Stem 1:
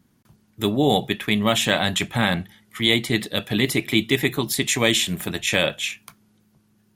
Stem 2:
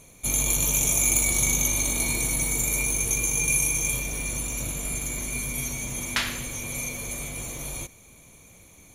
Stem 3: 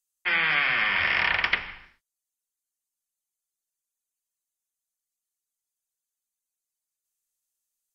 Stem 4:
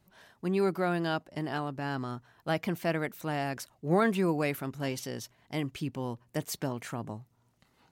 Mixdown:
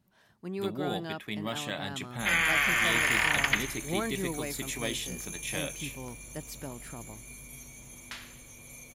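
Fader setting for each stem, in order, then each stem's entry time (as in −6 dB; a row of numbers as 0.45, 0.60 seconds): −15.5, −16.5, −2.5, −7.5 decibels; 0.00, 1.95, 2.00, 0.00 seconds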